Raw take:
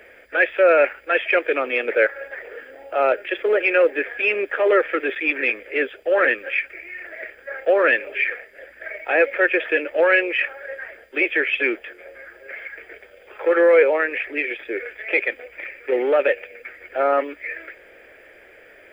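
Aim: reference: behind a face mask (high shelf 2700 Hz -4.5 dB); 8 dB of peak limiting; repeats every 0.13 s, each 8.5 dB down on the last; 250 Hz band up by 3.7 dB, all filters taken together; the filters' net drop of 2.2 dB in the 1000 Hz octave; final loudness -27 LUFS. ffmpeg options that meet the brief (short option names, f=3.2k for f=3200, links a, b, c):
-af "equalizer=f=250:t=o:g=6.5,equalizer=f=1k:t=o:g=-3,alimiter=limit=-12dB:level=0:latency=1,highshelf=f=2.7k:g=-4.5,aecho=1:1:130|260|390|520:0.376|0.143|0.0543|0.0206,volume=-4dB"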